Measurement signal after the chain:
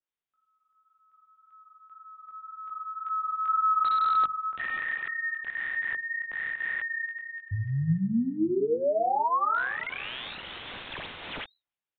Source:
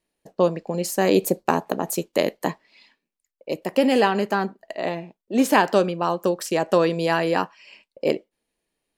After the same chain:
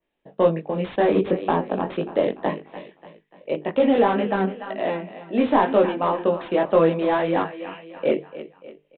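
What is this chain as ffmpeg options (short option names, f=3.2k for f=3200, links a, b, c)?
-filter_complex "[0:a]asoftclip=type=tanh:threshold=-5.5dB,asplit=2[a][b];[b]aecho=0:1:293|586|879|1172:0.178|0.0818|0.0376|0.0173[c];[a][c]amix=inputs=2:normalize=0,flanger=delay=18.5:depth=3.1:speed=1.9,bandreject=f=50:t=h:w=6,bandreject=f=100:t=h:w=6,bandreject=f=150:t=h:w=6,bandreject=f=200:t=h:w=6,bandreject=f=250:t=h:w=6,bandreject=f=300:t=h:w=6,bandreject=f=350:t=h:w=6,bandreject=f=400:t=h:w=6,bandreject=f=450:t=h:w=6,acrossover=split=130|1400[d][e][f];[f]aeval=exprs='(mod(35.5*val(0)+1,2)-1)/35.5':c=same[g];[d][e][g]amix=inputs=3:normalize=0,aresample=8000,aresample=44100,adynamicequalizer=threshold=0.00631:dfrequency=2800:dqfactor=0.7:tfrequency=2800:tqfactor=0.7:attack=5:release=100:ratio=0.375:range=2:mode=cutabove:tftype=highshelf,volume=5dB"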